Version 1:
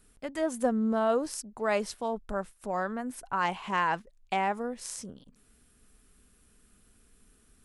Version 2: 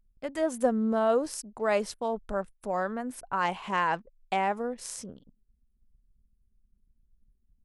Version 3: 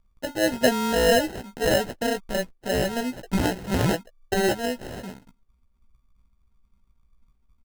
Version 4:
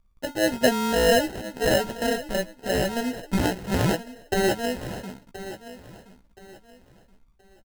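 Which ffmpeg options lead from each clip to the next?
-af "anlmdn=0.00158,equalizer=f=540:t=o:w=0.77:g=3"
-filter_complex "[0:a]acrusher=samples=38:mix=1:aa=0.000001,asplit=2[a][b];[b]adelay=16,volume=-7dB[c];[a][c]amix=inputs=2:normalize=0,volume=4.5dB"
-af "aecho=1:1:1024|2048|3072:0.188|0.0565|0.017"

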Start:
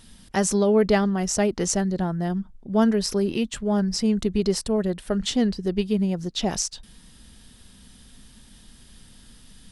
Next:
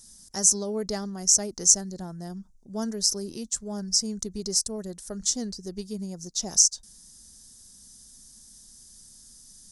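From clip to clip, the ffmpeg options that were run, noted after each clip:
-af "highshelf=f=4.2k:t=q:w=3:g=14,volume=-11.5dB"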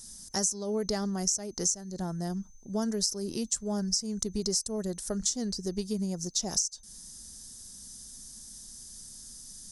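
-af "acompressor=threshold=-30dB:ratio=12,aeval=exprs='val(0)+0.000631*sin(2*PI*6200*n/s)':c=same,volume=4dB"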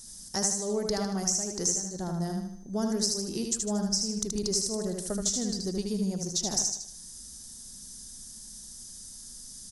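-af "aeval=exprs='0.282*(cos(1*acos(clip(val(0)/0.282,-1,1)))-cos(1*PI/2))+0.002*(cos(6*acos(clip(val(0)/0.282,-1,1)))-cos(6*PI/2))':c=same,aecho=1:1:77|154|231|308|385|462:0.631|0.284|0.128|0.0575|0.0259|0.0116"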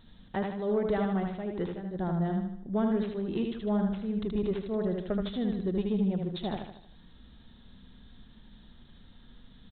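-af "asoftclip=type=tanh:threshold=-21dB,aresample=8000,aresample=44100,volume=3dB"

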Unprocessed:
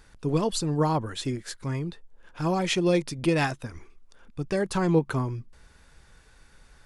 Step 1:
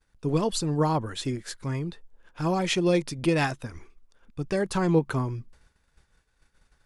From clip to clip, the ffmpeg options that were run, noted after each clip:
-af "agate=range=-33dB:threshold=-44dB:ratio=3:detection=peak"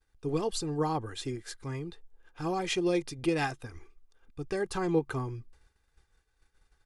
-af "aecho=1:1:2.5:0.47,volume=-6dB"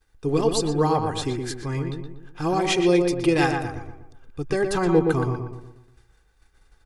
-filter_complex "[0:a]asplit=2[a][b];[b]adelay=120,lowpass=f=1.8k:p=1,volume=-4dB,asplit=2[c][d];[d]adelay=120,lowpass=f=1.8k:p=1,volume=0.47,asplit=2[e][f];[f]adelay=120,lowpass=f=1.8k:p=1,volume=0.47,asplit=2[g][h];[h]adelay=120,lowpass=f=1.8k:p=1,volume=0.47,asplit=2[i][j];[j]adelay=120,lowpass=f=1.8k:p=1,volume=0.47,asplit=2[k][l];[l]adelay=120,lowpass=f=1.8k:p=1,volume=0.47[m];[a][c][e][g][i][k][m]amix=inputs=7:normalize=0,volume=8dB"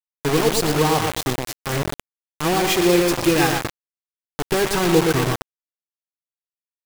-af "acrusher=bits=3:mix=0:aa=0.000001,volume=2dB"

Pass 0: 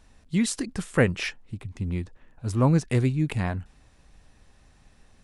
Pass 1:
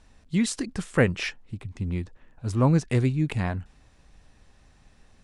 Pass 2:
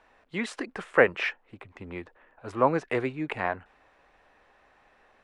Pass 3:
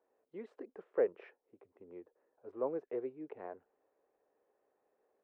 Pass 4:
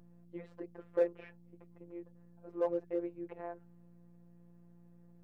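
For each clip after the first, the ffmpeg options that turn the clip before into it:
-af "lowpass=9.5k"
-filter_complex "[0:a]acrossover=split=390 2600:gain=0.0631 1 0.0891[a][b][c];[a][b][c]amix=inputs=3:normalize=0,volume=6dB"
-af "bandpass=f=430:t=q:w=2.9:csg=0,volume=-7dB"
-filter_complex "[0:a]aeval=exprs='val(0)+0.00141*(sin(2*PI*60*n/s)+sin(2*PI*2*60*n/s)/2+sin(2*PI*3*60*n/s)/3+sin(2*PI*4*60*n/s)/4+sin(2*PI*5*60*n/s)/5)':c=same,afftfilt=real='hypot(re,im)*cos(PI*b)':imag='0':win_size=1024:overlap=0.75,asplit=2[a][b];[b]asoftclip=type=hard:threshold=-34.5dB,volume=-6dB[c];[a][c]amix=inputs=2:normalize=0,volume=2.5dB"

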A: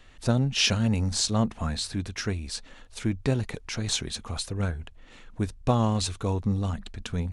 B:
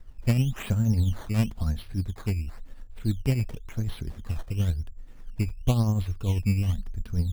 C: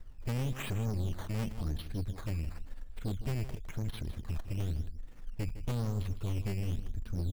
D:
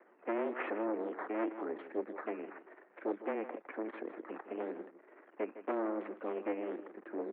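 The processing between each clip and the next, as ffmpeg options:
-af "aemphasis=mode=reproduction:type=riaa,acrusher=samples=12:mix=1:aa=0.000001:lfo=1:lforange=12:lforate=0.96,tremolo=f=10:d=0.44,volume=-7.5dB"
-af "aeval=exprs='(tanh(35.5*val(0)+0.5)-tanh(0.5))/35.5':c=same,aecho=1:1:158:0.224"
-filter_complex "[0:a]asplit=2[a][b];[b]acrusher=bits=5:mode=log:mix=0:aa=0.000001,volume=-5.5dB[c];[a][c]amix=inputs=2:normalize=0,highpass=f=220:t=q:w=0.5412,highpass=f=220:t=q:w=1.307,lowpass=f=2k:t=q:w=0.5176,lowpass=f=2k:t=q:w=0.7071,lowpass=f=2k:t=q:w=1.932,afreqshift=110,volume=2.5dB"

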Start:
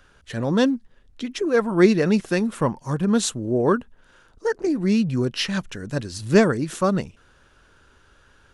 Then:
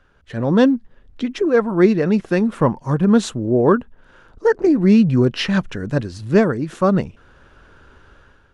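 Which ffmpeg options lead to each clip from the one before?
-af "lowpass=f=1.8k:p=1,dynaudnorm=f=150:g=5:m=10dB,volume=-1dB"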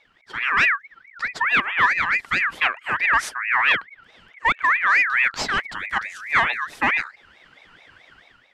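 -filter_complex "[0:a]equalizer=f=160:t=o:w=0.97:g=-3.5,asplit=2[a][b];[b]aeval=exprs='0.237*(abs(mod(val(0)/0.237+3,4)-2)-1)':c=same,volume=-10.5dB[c];[a][c]amix=inputs=2:normalize=0,aeval=exprs='val(0)*sin(2*PI*1800*n/s+1800*0.25/4.6*sin(2*PI*4.6*n/s))':c=same,volume=-2.5dB"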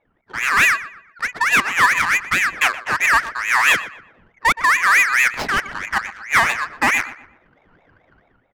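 -filter_complex "[0:a]adynamicsmooth=sensitivity=3:basefreq=770,asplit=2[a][b];[b]adelay=121,lowpass=f=2.5k:p=1,volume=-14dB,asplit=2[c][d];[d]adelay=121,lowpass=f=2.5k:p=1,volume=0.38,asplit=2[e][f];[f]adelay=121,lowpass=f=2.5k:p=1,volume=0.38,asplit=2[g][h];[h]adelay=121,lowpass=f=2.5k:p=1,volume=0.38[i];[a][c][e][g][i]amix=inputs=5:normalize=0,volume=3.5dB"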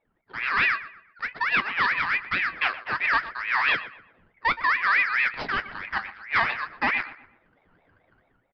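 -filter_complex "[0:a]asplit=2[a][b];[b]aeval=exprs='(mod(1.78*val(0)+1,2)-1)/1.78':c=same,volume=-6dB[c];[a][c]amix=inputs=2:normalize=0,flanger=delay=4.3:depth=8.1:regen=-56:speed=0.58:shape=triangular,aresample=11025,aresample=44100,volume=-7dB"

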